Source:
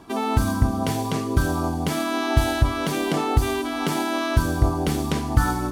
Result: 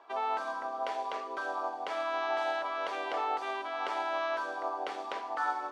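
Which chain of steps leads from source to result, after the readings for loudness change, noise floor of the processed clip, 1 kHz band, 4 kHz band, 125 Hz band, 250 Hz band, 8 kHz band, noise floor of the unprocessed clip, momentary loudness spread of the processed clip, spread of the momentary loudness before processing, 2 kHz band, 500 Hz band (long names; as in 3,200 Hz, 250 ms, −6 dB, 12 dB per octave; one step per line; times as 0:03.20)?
−11.0 dB, −41 dBFS, −4.5 dB, −12.5 dB, below −40 dB, −26.5 dB, below −20 dB, −27 dBFS, 5 LU, 3 LU, −7.0 dB, −8.0 dB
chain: high-pass filter 580 Hz 24 dB per octave
head-to-tape spacing loss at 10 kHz 31 dB
level −1.5 dB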